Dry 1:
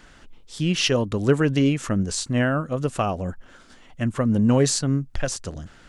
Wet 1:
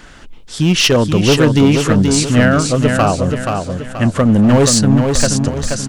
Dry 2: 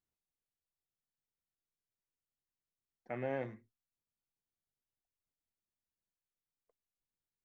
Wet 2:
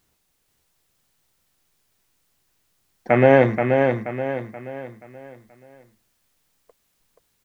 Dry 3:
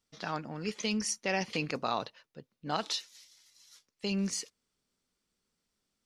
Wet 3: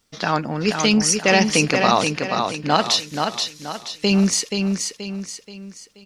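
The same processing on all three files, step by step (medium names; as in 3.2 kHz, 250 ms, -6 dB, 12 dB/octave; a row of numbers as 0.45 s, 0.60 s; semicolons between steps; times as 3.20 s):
hard clipper -17 dBFS; on a send: feedback delay 479 ms, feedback 41%, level -5 dB; on the sum: peak normalisation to -1.5 dBFS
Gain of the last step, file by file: +10.5 dB, +24.5 dB, +15.0 dB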